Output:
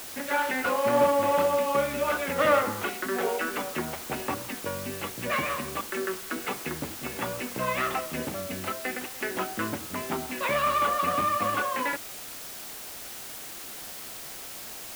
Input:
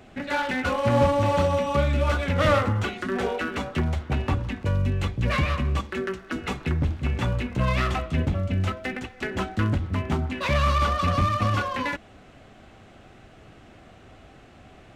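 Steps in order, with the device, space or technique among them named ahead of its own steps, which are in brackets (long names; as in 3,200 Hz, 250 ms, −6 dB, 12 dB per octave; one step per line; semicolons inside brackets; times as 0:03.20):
wax cylinder (band-pass filter 320–2,800 Hz; tape wow and flutter 23 cents; white noise bed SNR 11 dB)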